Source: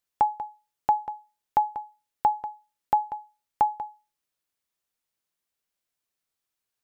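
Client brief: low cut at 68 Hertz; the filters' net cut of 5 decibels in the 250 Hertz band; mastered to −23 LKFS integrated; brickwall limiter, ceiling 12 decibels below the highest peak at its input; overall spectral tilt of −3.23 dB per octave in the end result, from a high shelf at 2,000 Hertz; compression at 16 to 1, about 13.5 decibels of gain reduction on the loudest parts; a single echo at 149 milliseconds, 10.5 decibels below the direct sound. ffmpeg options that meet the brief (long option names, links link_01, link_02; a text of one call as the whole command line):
ffmpeg -i in.wav -af "highpass=68,equalizer=frequency=250:width_type=o:gain=-7,highshelf=frequency=2000:gain=-3.5,acompressor=threshold=-31dB:ratio=16,alimiter=level_in=3.5dB:limit=-24dB:level=0:latency=1,volume=-3.5dB,aecho=1:1:149:0.299,volume=21dB" out.wav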